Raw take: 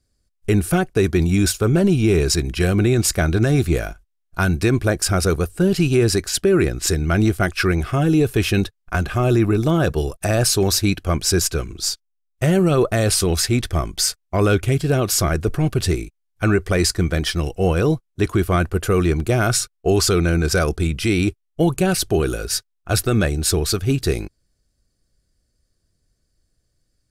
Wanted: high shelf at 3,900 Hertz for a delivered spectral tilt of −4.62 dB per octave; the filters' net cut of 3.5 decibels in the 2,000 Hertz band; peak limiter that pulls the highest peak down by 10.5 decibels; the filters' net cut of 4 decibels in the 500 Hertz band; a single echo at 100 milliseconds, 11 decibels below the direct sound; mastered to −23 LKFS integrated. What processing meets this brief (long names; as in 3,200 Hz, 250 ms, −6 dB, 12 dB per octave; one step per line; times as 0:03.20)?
parametric band 500 Hz −5.5 dB
parametric band 2,000 Hz −6.5 dB
high-shelf EQ 3,900 Hz +7 dB
brickwall limiter −10.5 dBFS
single-tap delay 100 ms −11 dB
level −2 dB